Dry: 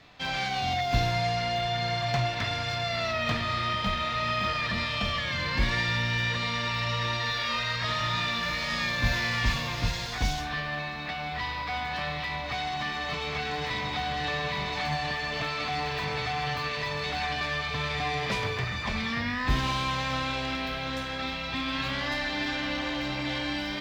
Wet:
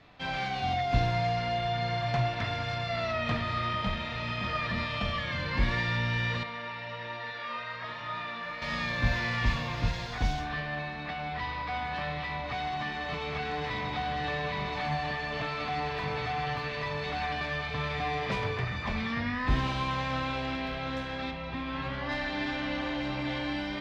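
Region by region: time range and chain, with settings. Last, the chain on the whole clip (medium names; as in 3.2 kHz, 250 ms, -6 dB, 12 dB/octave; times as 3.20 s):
6.43–8.62 s: high-pass 620 Hz 6 dB/octave + peaking EQ 8.2 kHz -13.5 dB 2.6 oct
21.31–22.09 s: treble shelf 2.6 kHz -9.5 dB + doubling 13 ms -10.5 dB
whole clip: low-pass 2 kHz 6 dB/octave; de-hum 69.3 Hz, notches 33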